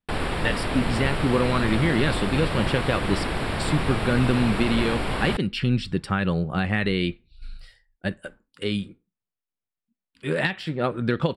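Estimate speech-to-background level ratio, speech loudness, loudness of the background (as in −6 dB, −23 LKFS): 2.0 dB, −25.5 LKFS, −27.5 LKFS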